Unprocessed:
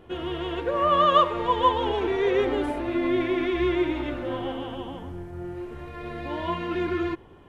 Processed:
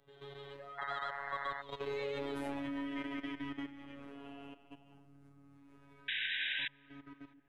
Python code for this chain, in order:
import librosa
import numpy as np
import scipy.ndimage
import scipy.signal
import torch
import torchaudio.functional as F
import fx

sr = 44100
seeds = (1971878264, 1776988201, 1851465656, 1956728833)

y = fx.doppler_pass(x, sr, speed_mps=37, closest_m=4.9, pass_at_s=2.46)
y = fx.peak_eq(y, sr, hz=600.0, db=-4.5, octaves=2.8)
y = fx.hum_notches(y, sr, base_hz=50, count=9)
y = fx.level_steps(y, sr, step_db=15)
y = fx.spec_paint(y, sr, seeds[0], shape='noise', start_s=0.78, length_s=0.84, low_hz=590.0, high_hz=2100.0, level_db=-49.0)
y = fx.robotise(y, sr, hz=140.0)
y = fx.spec_paint(y, sr, seeds[1], shape='noise', start_s=6.08, length_s=0.6, low_hz=1500.0, high_hz=3900.0, level_db=-44.0)
y = fx.echo_filtered(y, sr, ms=330, feedback_pct=73, hz=810.0, wet_db=-23)
y = fx.band_squash(y, sr, depth_pct=40)
y = F.gain(torch.from_numpy(y), 8.5).numpy()